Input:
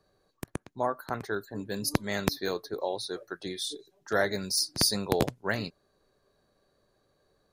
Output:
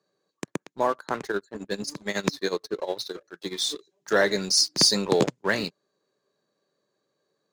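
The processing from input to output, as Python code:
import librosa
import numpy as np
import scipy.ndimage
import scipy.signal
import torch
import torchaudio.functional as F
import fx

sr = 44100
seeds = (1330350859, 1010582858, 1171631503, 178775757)

y = fx.cabinet(x, sr, low_hz=160.0, low_slope=24, high_hz=8100.0, hz=(240.0, 720.0, 1400.0, 6900.0), db=(-4, -6, -3, 5))
y = fx.leveller(y, sr, passes=2)
y = fx.tremolo(y, sr, hz=11.0, depth=0.85, at=(1.31, 3.52), fade=0.02)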